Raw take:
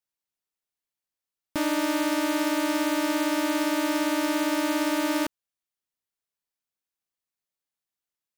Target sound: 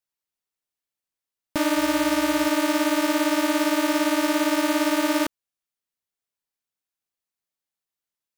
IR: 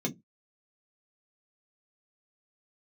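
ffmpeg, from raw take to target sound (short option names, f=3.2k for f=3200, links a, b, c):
-filter_complex "[0:a]asettb=1/sr,asplit=3[a][b][c];[a]atrim=end=1.774[d];[b]atrim=start=1.77:end=2.48,asetpts=PTS-STARTPTS,afade=t=in:d=0.004:c=qsin,afade=t=out:st=0.706:d=0.004:c=qsin,aeval=exprs='val(0)+0.00316*(sin(2*PI*60*n/s)+sin(2*PI*2*60*n/s)/2+sin(2*PI*3*60*n/s)/3+sin(2*PI*4*60*n/s)/4+sin(2*PI*5*60*n/s)/5)':c=same[e];[c]atrim=start=2.476[f];[d][e]acrossfade=d=0.004:c1=hsin:c2=qsin[g];[g][f]acrossfade=d=0.004:c1=qsin:c2=hsin,asplit=2[h][i];[i]acrusher=bits=3:mix=0:aa=0.000001,volume=-7dB[j];[h][j]amix=inputs=2:normalize=0"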